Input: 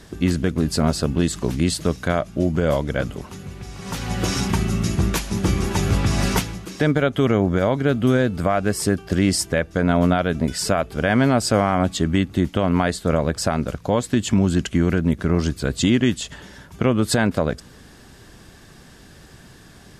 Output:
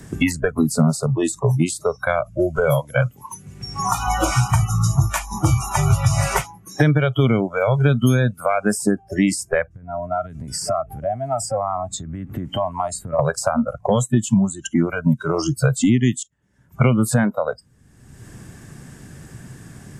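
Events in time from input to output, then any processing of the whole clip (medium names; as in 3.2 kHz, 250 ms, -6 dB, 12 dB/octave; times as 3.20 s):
9.73–13.19 s: compression, threshold -30 dBFS
16.23–16.85 s: fade in, from -22.5 dB
whole clip: spectral noise reduction 30 dB; graphic EQ 125/250/2000/4000/8000 Hz +11/+4/+3/-9/+8 dB; three bands compressed up and down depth 100%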